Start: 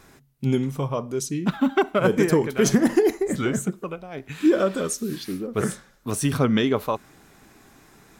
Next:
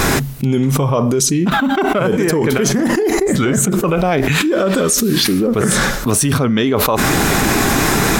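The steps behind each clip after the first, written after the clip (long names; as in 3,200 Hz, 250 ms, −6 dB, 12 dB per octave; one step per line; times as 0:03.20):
envelope flattener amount 100%
level −1 dB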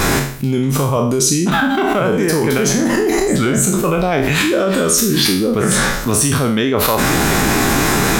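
peak hold with a decay on every bin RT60 0.54 s
level −2 dB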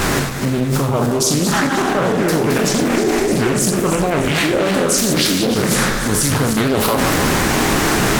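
feedback delay that plays each chunk backwards 152 ms, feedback 65%, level −7 dB
highs frequency-modulated by the lows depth 0.57 ms
level −2 dB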